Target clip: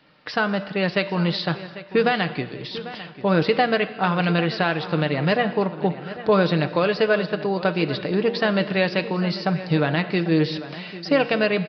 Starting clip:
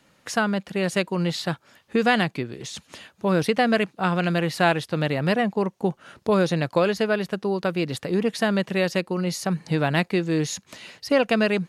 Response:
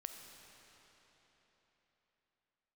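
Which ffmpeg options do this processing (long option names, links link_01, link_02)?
-filter_complex "[0:a]lowshelf=frequency=220:gain=-4.5,aecho=1:1:6.6:0.34,bandreject=frequency=117.7:width_type=h:width=4,bandreject=frequency=235.4:width_type=h:width=4,bandreject=frequency=353.1:width_type=h:width=4,bandreject=frequency=470.8:width_type=h:width=4,bandreject=frequency=588.5:width_type=h:width=4,bandreject=frequency=706.2:width_type=h:width=4,bandreject=frequency=823.9:width_type=h:width=4,bandreject=frequency=941.6:width_type=h:width=4,bandreject=frequency=1059.3:width_type=h:width=4,bandreject=frequency=1177:width_type=h:width=4,bandreject=frequency=1294.7:width_type=h:width=4,bandreject=frequency=1412.4:width_type=h:width=4,bandreject=frequency=1530.1:width_type=h:width=4,bandreject=frequency=1647.8:width_type=h:width=4,bandreject=frequency=1765.5:width_type=h:width=4,bandreject=frequency=1883.2:width_type=h:width=4,bandreject=frequency=2000.9:width_type=h:width=4,bandreject=frequency=2118.6:width_type=h:width=4,bandreject=frequency=2236.3:width_type=h:width=4,bandreject=frequency=2354:width_type=h:width=4,bandreject=frequency=2471.7:width_type=h:width=4,bandreject=frequency=2589.4:width_type=h:width=4,bandreject=frequency=2707.1:width_type=h:width=4,bandreject=frequency=2824.8:width_type=h:width=4,bandreject=frequency=2942.5:width_type=h:width=4,bandreject=frequency=3060.2:width_type=h:width=4,bandreject=frequency=3177.9:width_type=h:width=4,bandreject=frequency=3295.6:width_type=h:width=4,bandreject=frequency=3413.3:width_type=h:width=4,bandreject=frequency=3531:width_type=h:width=4,bandreject=frequency=3648.7:width_type=h:width=4,bandreject=frequency=3766.4:width_type=h:width=4,bandreject=frequency=3884.1:width_type=h:width=4,bandreject=frequency=4001.8:width_type=h:width=4,bandreject=frequency=4119.5:width_type=h:width=4,alimiter=limit=-11.5dB:level=0:latency=1:release=234,asplit=2[link_01][link_02];[link_02]adelay=796,lowpass=frequency=3700:poles=1,volume=-14.5dB,asplit=2[link_03][link_04];[link_04]adelay=796,lowpass=frequency=3700:poles=1,volume=0.46,asplit=2[link_05][link_06];[link_06]adelay=796,lowpass=frequency=3700:poles=1,volume=0.46,asplit=2[link_07][link_08];[link_08]adelay=796,lowpass=frequency=3700:poles=1,volume=0.46[link_09];[link_01][link_03][link_05][link_07][link_09]amix=inputs=5:normalize=0,asplit=2[link_10][link_11];[1:a]atrim=start_sample=2205,afade=type=out:start_time=0.38:duration=0.01,atrim=end_sample=17199[link_12];[link_11][link_12]afir=irnorm=-1:irlink=0,volume=-1dB[link_13];[link_10][link_13]amix=inputs=2:normalize=0,aresample=11025,aresample=44100"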